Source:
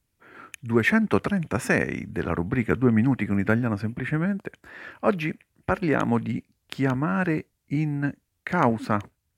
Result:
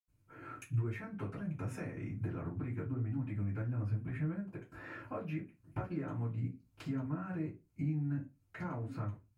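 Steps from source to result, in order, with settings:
parametric band 100 Hz +4 dB 0.28 octaves
notch filter 810 Hz, Q 15
in parallel at 0 dB: brickwall limiter −17 dBFS, peak gain reduction 11.5 dB
on the sum: downward compressor 5 to 1, threshold −32 dBFS, peak gain reduction 18.5 dB
convolution reverb RT60 0.25 s, pre-delay 76 ms
level +16 dB

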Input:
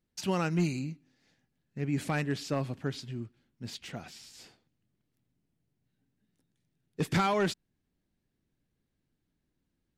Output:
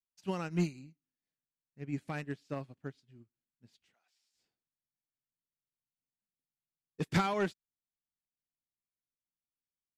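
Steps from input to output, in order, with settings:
0:03.92–0:04.33: high-pass filter 1,200 Hz → 310 Hz 12 dB per octave
expander for the loud parts 2.5 to 1, over −43 dBFS

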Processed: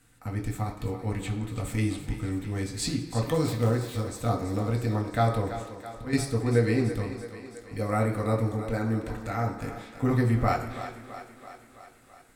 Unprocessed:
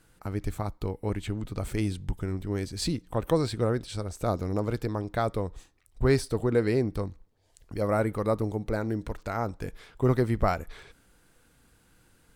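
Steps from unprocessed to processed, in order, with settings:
0:03.34–0:04.00: gap after every zero crossing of 0.077 ms
low-shelf EQ 80 Hz +9.5 dB
0:04.86–0:06.13: compressor whose output falls as the input rises −23 dBFS, ratio −0.5
feedback echo with a high-pass in the loop 331 ms, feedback 65%, high-pass 220 Hz, level −11 dB
convolution reverb RT60 1.0 s, pre-delay 3 ms, DRR −0.5 dB

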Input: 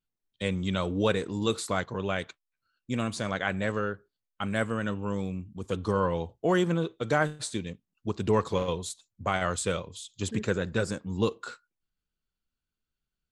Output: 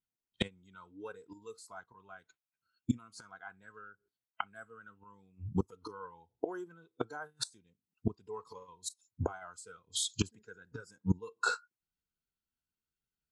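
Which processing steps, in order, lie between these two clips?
gate with flip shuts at −26 dBFS, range −26 dB
noise reduction from a noise print of the clip's start 16 dB
notch comb filter 580 Hz
level +10.5 dB

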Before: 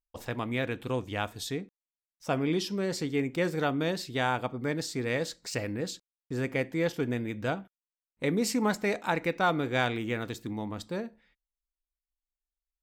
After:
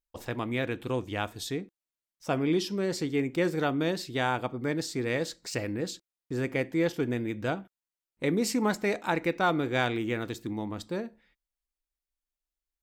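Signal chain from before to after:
parametric band 340 Hz +5 dB 0.29 octaves

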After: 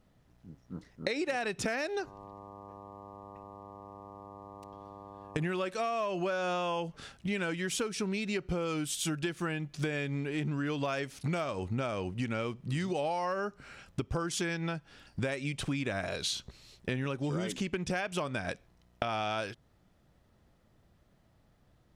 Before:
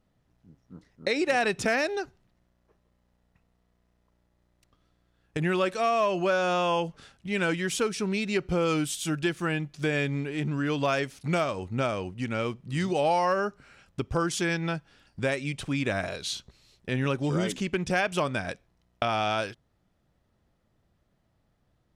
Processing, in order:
0:01.98–0:05.53: hum with harmonics 100 Hz, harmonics 12, −53 dBFS 0 dB per octave
downward compressor, threshold −35 dBFS, peak gain reduction 13.5 dB
level +4.5 dB

